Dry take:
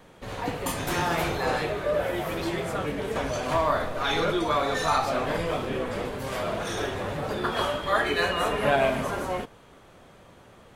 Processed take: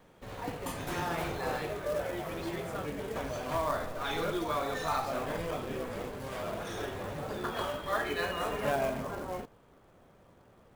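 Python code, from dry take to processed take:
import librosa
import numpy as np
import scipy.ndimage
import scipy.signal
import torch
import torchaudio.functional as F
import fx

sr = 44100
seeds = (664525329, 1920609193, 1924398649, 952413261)

y = fx.high_shelf(x, sr, hz=2300.0, db=fx.steps((0.0, -4.0), (8.71, -12.0)))
y = fx.quant_float(y, sr, bits=2)
y = F.gain(torch.from_numpy(y), -7.0).numpy()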